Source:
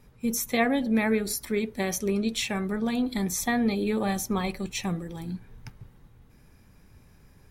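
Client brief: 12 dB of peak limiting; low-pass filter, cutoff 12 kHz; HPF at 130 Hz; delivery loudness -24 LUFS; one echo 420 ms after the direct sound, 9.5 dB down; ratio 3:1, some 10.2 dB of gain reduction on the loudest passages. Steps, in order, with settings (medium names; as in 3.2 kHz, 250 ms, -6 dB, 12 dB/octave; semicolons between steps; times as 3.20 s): high-pass 130 Hz; low-pass 12 kHz; compression 3:1, threshold -34 dBFS; peak limiter -32.5 dBFS; delay 420 ms -9.5 dB; trim +16.5 dB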